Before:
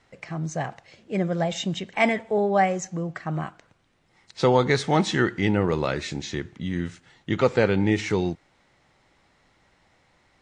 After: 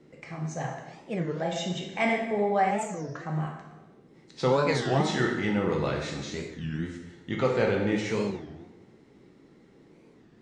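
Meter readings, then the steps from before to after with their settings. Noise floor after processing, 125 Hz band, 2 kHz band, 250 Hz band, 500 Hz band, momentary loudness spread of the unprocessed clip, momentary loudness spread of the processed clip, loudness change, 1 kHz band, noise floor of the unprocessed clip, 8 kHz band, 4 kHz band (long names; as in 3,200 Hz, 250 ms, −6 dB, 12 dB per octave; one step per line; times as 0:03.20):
−57 dBFS, −4.0 dB, −4.0 dB, −4.5 dB, −3.5 dB, 11 LU, 12 LU, −4.0 dB, −3.0 dB, −64 dBFS, −4.5 dB, −4.0 dB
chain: dense smooth reverb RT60 1.1 s, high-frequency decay 0.8×, DRR −0.5 dB
noise in a band 120–440 Hz −49 dBFS
wow of a warped record 33 1/3 rpm, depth 250 cents
level −7 dB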